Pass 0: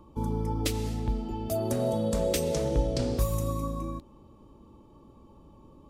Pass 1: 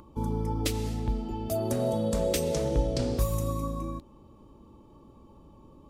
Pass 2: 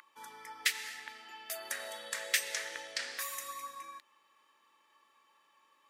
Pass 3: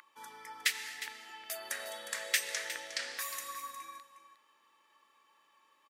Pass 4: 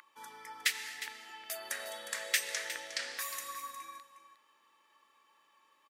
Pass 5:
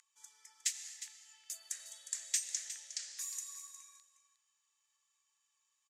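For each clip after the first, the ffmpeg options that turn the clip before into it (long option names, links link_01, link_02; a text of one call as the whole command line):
ffmpeg -i in.wav -af "acompressor=mode=upward:threshold=-50dB:ratio=2.5" out.wav
ffmpeg -i in.wav -af "highpass=frequency=1800:width_type=q:width=5.9" out.wav
ffmpeg -i in.wav -af "aecho=1:1:359:0.237" out.wav
ffmpeg -i in.wav -af "asoftclip=type=hard:threshold=-16.5dB" out.wav
ffmpeg -i in.wav -af "bandpass=frequency=7000:width_type=q:width=4.2:csg=0,volume=6.5dB" out.wav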